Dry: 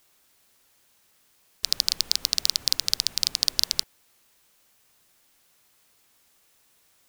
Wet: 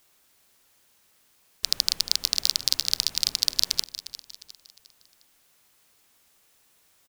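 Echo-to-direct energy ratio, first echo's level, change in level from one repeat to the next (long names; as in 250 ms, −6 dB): −13.0 dB, −14.0 dB, −8.0 dB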